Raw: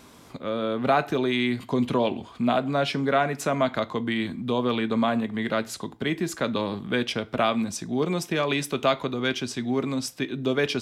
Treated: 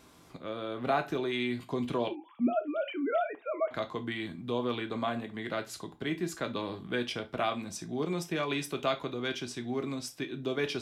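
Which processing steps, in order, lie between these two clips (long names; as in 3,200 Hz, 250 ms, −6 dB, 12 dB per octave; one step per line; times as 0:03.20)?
0:02.08–0:03.71: three sine waves on the formant tracks
reverb whose tail is shaped and stops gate 90 ms falling, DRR 7 dB
level −8 dB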